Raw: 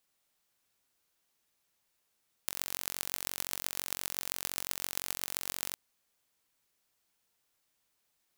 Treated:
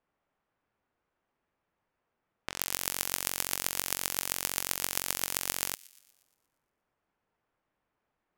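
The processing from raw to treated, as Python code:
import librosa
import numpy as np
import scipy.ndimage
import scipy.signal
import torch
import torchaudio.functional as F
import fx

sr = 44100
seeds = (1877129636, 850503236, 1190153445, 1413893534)

p1 = fx.env_lowpass(x, sr, base_hz=1300.0, full_db=-47.0)
p2 = fx.peak_eq(p1, sr, hz=4000.0, db=-3.5, octaves=0.4)
p3 = p2 + fx.echo_wet_highpass(p2, sr, ms=118, feedback_pct=54, hz=2800.0, wet_db=-19.5, dry=0)
y = p3 * 10.0 ** (6.0 / 20.0)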